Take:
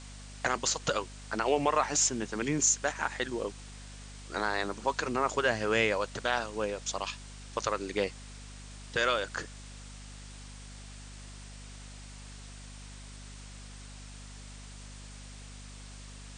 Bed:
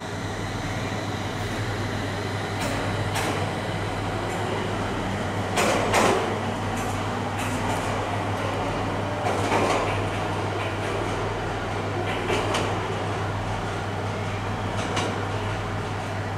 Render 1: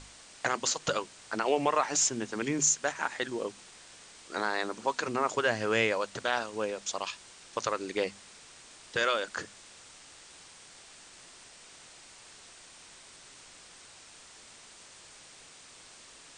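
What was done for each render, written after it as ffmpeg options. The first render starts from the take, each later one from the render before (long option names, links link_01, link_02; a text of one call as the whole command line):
ffmpeg -i in.wav -af "bandreject=frequency=50:width_type=h:width=6,bandreject=frequency=100:width_type=h:width=6,bandreject=frequency=150:width_type=h:width=6,bandreject=frequency=200:width_type=h:width=6,bandreject=frequency=250:width_type=h:width=6" out.wav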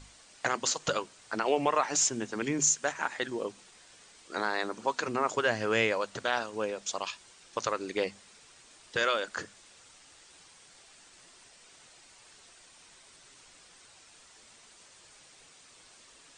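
ffmpeg -i in.wav -af "afftdn=noise_reduction=6:noise_floor=-53" out.wav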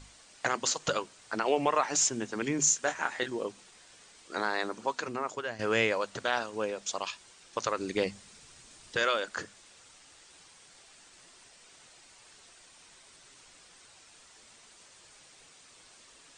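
ffmpeg -i in.wav -filter_complex "[0:a]asettb=1/sr,asplit=3[link_01][link_02][link_03];[link_01]atrim=end=2.664[link_04];[link_02]atrim=start=2.66:end=3.28,asetpts=PTS-STARTPTS,afade=type=in:duration=0.004:curve=qsin,afade=type=out:start_time=0.616:duration=0.004:curve=qsin,asplit=2[link_05][link_06];[link_06]adelay=24,volume=-8dB[link_07];[link_05][link_07]amix=inputs=2:normalize=0,atrim=end_sample=27342[link_08];[link_03]atrim=start=3.276[link_09];[link_04][link_08]acrossfade=duration=0.004:curve1=hsin:curve2=qsin[link_10];[link_10][link_09]acrossfade=duration=0.004:curve1=qsin:curve2=hsin,asettb=1/sr,asplit=3[link_11][link_12][link_13];[link_11]atrim=end=7.774[link_14];[link_12]atrim=start=7.77:end=8.95,asetpts=PTS-STARTPTS,afade=type=in:duration=0.004:curve=qsin,afade=type=out:start_time=1.176:duration=0.004:curve=qsin,bass=frequency=250:gain=9,treble=frequency=4000:gain=3[link_15];[link_13]atrim=start=8.946[link_16];[link_14][link_15]acrossfade=duration=0.004:curve1=hsin:curve2=qsin[link_17];[link_17][link_16]acrossfade=duration=0.004:curve1=qsin:curve2=hsin,asplit=2[link_18][link_19];[link_18]atrim=end=5.59,asetpts=PTS-STARTPTS,afade=type=out:start_time=4.67:duration=0.92:silence=0.266073[link_20];[link_19]atrim=start=5.59,asetpts=PTS-STARTPTS,afade=type=in:duration=0.004:curve=hsin:silence=0.266073[link_21];[link_20][link_21]concat=n=2:v=0:a=1" out.wav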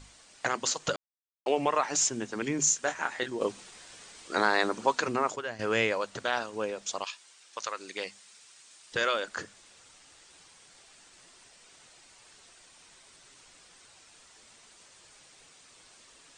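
ffmpeg -i in.wav -filter_complex "[0:a]asettb=1/sr,asplit=3[link_01][link_02][link_03];[link_01]atrim=end=7.044[link_04];[link_02]atrim=start=7.04:end=8.92,asetpts=PTS-STARTPTS,afade=type=in:duration=0.004:curve=qsin,afade=type=out:start_time=1.876:duration=0.004:curve=qsin,highpass=frequency=1300:poles=1[link_05];[link_03]atrim=start=8.916[link_06];[link_04][link_05]acrossfade=duration=0.004:curve1=hsin:curve2=qsin[link_07];[link_07][link_06]acrossfade=duration=0.004:curve1=qsin:curve2=hsin,asplit=5[link_08][link_09][link_10][link_11][link_12];[link_08]atrim=end=0.96,asetpts=PTS-STARTPTS,afade=type=out:start_time=0.956:duration=0.004:curve=hsin[link_13];[link_09]atrim=start=0.96:end=1.46,asetpts=PTS-STARTPTS,volume=0[link_14];[link_10]atrim=start=1.46:end=3.412,asetpts=PTS-STARTPTS,afade=type=in:duration=0.004:curve=hsin[link_15];[link_11]atrim=start=3.408:end=5.362,asetpts=PTS-STARTPTS,volume=6dB[link_16];[link_12]atrim=start=5.358[link_17];[link_13][link_14][link_15]concat=n=3:v=0:a=1[link_18];[link_18][link_16]acrossfade=duration=0.004:curve1=hsin:curve2=hsin[link_19];[link_19][link_17]acrossfade=duration=0.004:curve1=hsin:curve2=hsin" out.wav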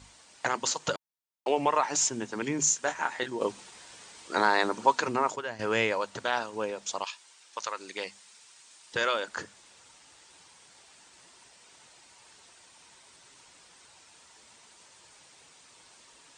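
ffmpeg -i in.wav -af "highpass=52,equalizer=frequency=920:width_type=o:width=0.2:gain=7" out.wav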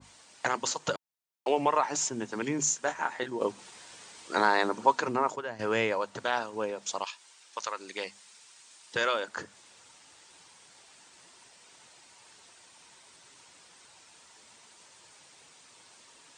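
ffmpeg -i in.wav -af "highpass=79,adynamicequalizer=threshold=0.00891:dfrequency=1700:dqfactor=0.7:tfrequency=1700:tqfactor=0.7:attack=5:release=100:ratio=0.375:range=3:mode=cutabove:tftype=highshelf" out.wav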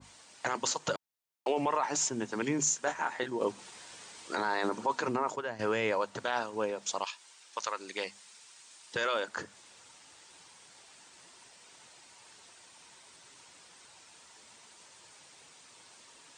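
ffmpeg -i in.wav -af "alimiter=limit=-19.5dB:level=0:latency=1:release=11" out.wav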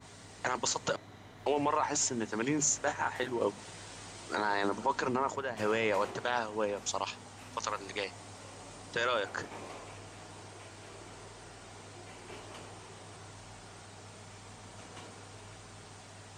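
ffmpeg -i in.wav -i bed.wav -filter_complex "[1:a]volume=-23.5dB[link_01];[0:a][link_01]amix=inputs=2:normalize=0" out.wav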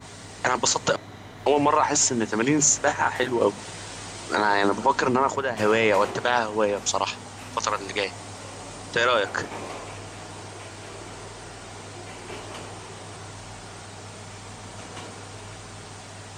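ffmpeg -i in.wav -af "volume=10dB" out.wav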